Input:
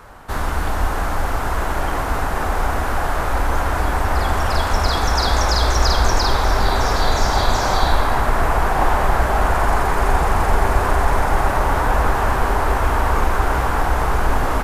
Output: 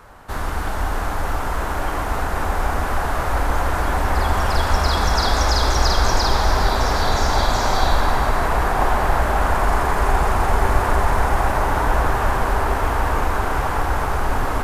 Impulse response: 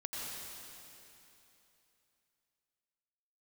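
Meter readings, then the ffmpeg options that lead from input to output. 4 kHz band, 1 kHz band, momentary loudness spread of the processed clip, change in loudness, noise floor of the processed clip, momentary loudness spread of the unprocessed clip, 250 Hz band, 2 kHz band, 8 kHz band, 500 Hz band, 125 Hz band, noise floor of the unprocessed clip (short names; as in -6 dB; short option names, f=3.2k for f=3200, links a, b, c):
-0.5 dB, -1.0 dB, 6 LU, -1.0 dB, -23 dBFS, 5 LU, -1.0 dB, -1.0 dB, -1.0 dB, -1.0 dB, -1.0 dB, -22 dBFS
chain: -filter_complex "[0:a]dynaudnorm=f=520:g=13:m=11.5dB,asplit=2[a][b];[1:a]atrim=start_sample=2205[c];[b][c]afir=irnorm=-1:irlink=0,volume=-3.5dB[d];[a][d]amix=inputs=2:normalize=0,volume=-6dB"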